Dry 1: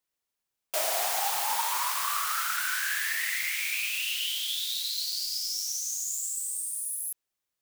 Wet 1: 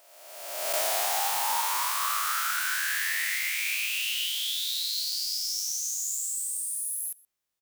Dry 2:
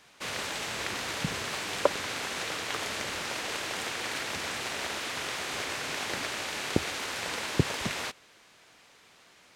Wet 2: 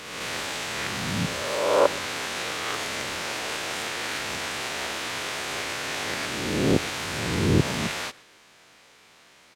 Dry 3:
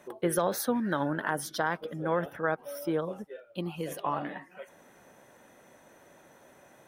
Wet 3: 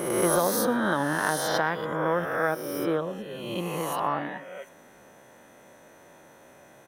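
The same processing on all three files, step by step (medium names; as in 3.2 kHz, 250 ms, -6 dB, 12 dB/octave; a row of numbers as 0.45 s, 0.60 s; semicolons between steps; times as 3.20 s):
reverse spectral sustain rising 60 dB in 1.41 s; echo from a far wall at 21 m, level -22 dB; normalise loudness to -27 LUFS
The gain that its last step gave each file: -2.0 dB, +0.5 dB, +1.0 dB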